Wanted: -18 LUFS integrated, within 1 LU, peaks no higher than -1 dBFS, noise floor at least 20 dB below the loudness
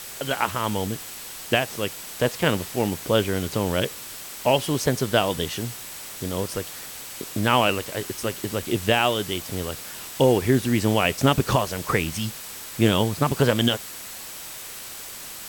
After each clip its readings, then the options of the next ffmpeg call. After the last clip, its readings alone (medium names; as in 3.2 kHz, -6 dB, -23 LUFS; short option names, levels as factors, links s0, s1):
steady tone 7.9 kHz; tone level -48 dBFS; noise floor -38 dBFS; noise floor target -44 dBFS; loudness -24.0 LUFS; peak level -5.0 dBFS; loudness target -18.0 LUFS
-> -af "bandreject=f=7900:w=30"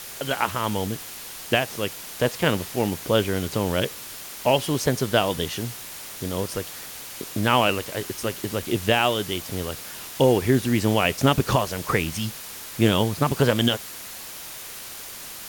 steady tone not found; noise floor -38 dBFS; noise floor target -44 dBFS
-> -af "afftdn=nr=6:nf=-38"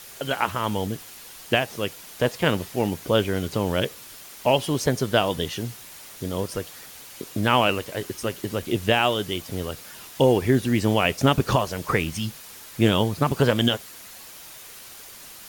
noise floor -43 dBFS; noise floor target -44 dBFS
-> -af "afftdn=nr=6:nf=-43"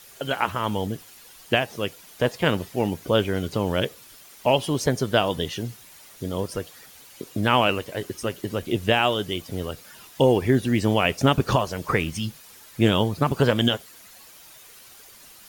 noise floor -48 dBFS; loudness -24.0 LUFS; peak level -5.5 dBFS; loudness target -18.0 LUFS
-> -af "volume=2,alimiter=limit=0.891:level=0:latency=1"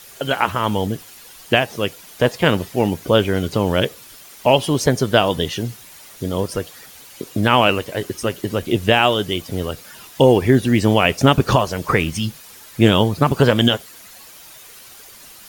loudness -18.0 LUFS; peak level -1.0 dBFS; noise floor -42 dBFS